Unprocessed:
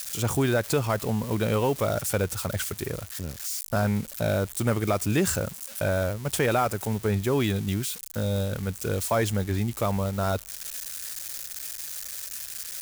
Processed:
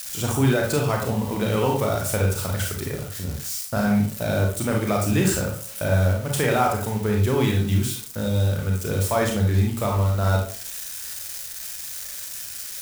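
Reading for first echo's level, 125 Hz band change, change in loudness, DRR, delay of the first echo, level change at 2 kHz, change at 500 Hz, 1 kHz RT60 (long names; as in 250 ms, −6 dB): no echo audible, +6.0 dB, +4.0 dB, −0.5 dB, no echo audible, +3.5 dB, +2.5 dB, 0.45 s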